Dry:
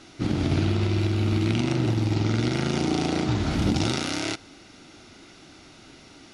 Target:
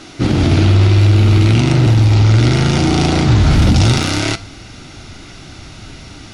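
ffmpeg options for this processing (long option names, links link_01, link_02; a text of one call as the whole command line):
ffmpeg -i in.wav -af "flanger=delay=6.4:depth=4.3:regen=83:speed=0.58:shape=triangular,asubboost=boost=4.5:cutoff=140,apsyclip=22.5dB,volume=-5.5dB" out.wav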